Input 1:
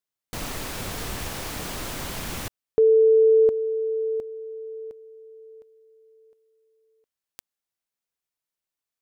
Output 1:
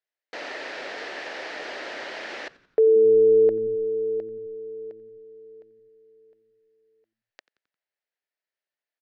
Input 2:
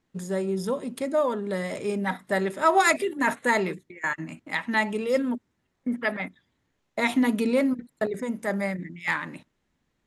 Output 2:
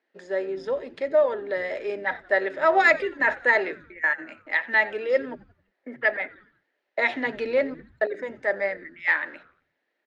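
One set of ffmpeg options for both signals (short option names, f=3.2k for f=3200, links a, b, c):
-filter_complex "[0:a]highpass=f=350:w=0.5412,highpass=f=350:w=1.3066,equalizer=f=600:t=q:w=4:g=5,equalizer=f=1.1k:t=q:w=4:g=-7,equalizer=f=1.8k:t=q:w=4:g=8,equalizer=f=3.5k:t=q:w=4:g=-4,lowpass=f=4.5k:w=0.5412,lowpass=f=4.5k:w=1.3066,asplit=5[a][b][c][d][e];[b]adelay=88,afreqshift=-110,volume=-21dB[f];[c]adelay=176,afreqshift=-220,volume=-27.2dB[g];[d]adelay=264,afreqshift=-330,volume=-33.4dB[h];[e]adelay=352,afreqshift=-440,volume=-39.6dB[i];[a][f][g][h][i]amix=inputs=5:normalize=0"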